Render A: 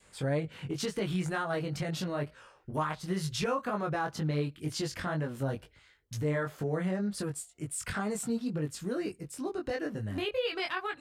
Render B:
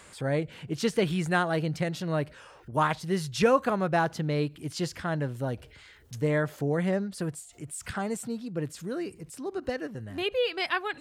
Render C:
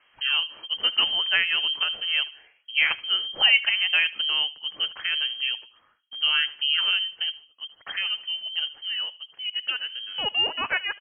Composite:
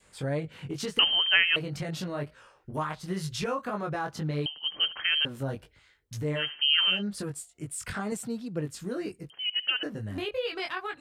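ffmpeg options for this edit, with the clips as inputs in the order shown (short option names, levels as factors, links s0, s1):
-filter_complex "[2:a]asplit=4[s0][s1][s2][s3];[0:a]asplit=6[s4][s5][s6][s7][s8][s9];[s4]atrim=end=0.992[s10];[s0]atrim=start=0.988:end=1.562[s11];[s5]atrim=start=1.558:end=4.462[s12];[s1]atrim=start=4.458:end=5.252[s13];[s6]atrim=start=5.248:end=6.51[s14];[s2]atrim=start=6.35:end=7.03[s15];[s7]atrim=start=6.87:end=8.122[s16];[1:a]atrim=start=8.118:end=8.612[s17];[s8]atrim=start=8.608:end=9.302[s18];[s3]atrim=start=9.298:end=9.832[s19];[s9]atrim=start=9.828[s20];[s10][s11]acrossfade=d=0.004:c1=hsin:c2=hsin[s21];[s21][s12]acrossfade=d=0.004:c1=hsin:c2=hsin[s22];[s22][s13]acrossfade=d=0.004:c1=hsin:c2=hsin[s23];[s23][s14]acrossfade=d=0.004:c1=hsin:c2=hsin[s24];[s24][s15]acrossfade=d=0.16:c1=tri:c2=tri[s25];[s25][s16]acrossfade=d=0.16:c1=tri:c2=tri[s26];[s26][s17]acrossfade=d=0.004:c1=hsin:c2=hsin[s27];[s27][s18]acrossfade=d=0.004:c1=hsin:c2=hsin[s28];[s28][s19]acrossfade=d=0.004:c1=hsin:c2=hsin[s29];[s29][s20]acrossfade=d=0.004:c1=hsin:c2=hsin"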